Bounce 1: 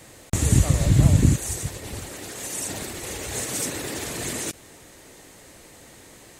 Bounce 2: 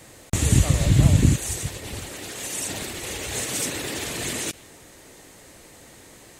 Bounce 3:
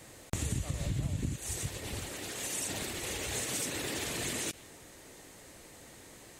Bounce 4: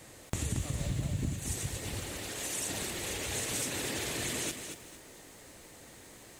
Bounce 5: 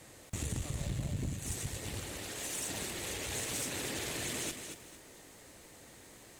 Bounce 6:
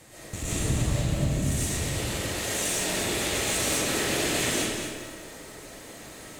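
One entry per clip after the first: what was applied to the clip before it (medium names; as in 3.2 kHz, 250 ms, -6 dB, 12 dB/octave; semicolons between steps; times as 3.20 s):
dynamic bell 3 kHz, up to +5 dB, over -47 dBFS, Q 1.2
compression 6:1, threshold -26 dBFS, peak gain reduction 15 dB; trim -5 dB
bit-crushed delay 229 ms, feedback 35%, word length 9-bit, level -7 dB
valve stage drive 27 dB, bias 0.55
algorithmic reverb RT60 1.4 s, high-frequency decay 0.7×, pre-delay 80 ms, DRR -9.5 dB; trim +2.5 dB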